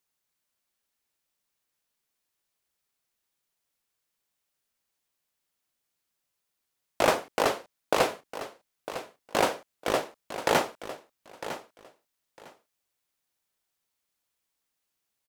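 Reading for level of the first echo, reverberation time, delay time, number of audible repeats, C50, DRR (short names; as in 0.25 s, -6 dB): -12.5 dB, none, 0.954 s, 2, none, none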